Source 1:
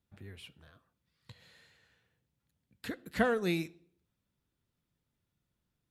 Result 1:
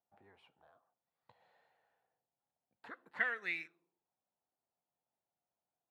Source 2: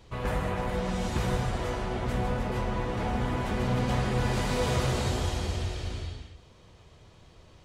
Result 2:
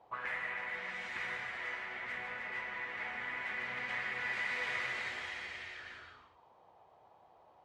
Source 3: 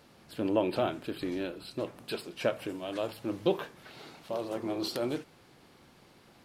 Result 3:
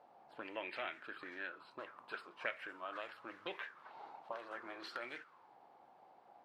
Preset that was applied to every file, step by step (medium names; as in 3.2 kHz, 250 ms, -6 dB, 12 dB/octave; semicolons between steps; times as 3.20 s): auto-wah 740–2000 Hz, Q 5.2, up, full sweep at -28 dBFS; trim +7 dB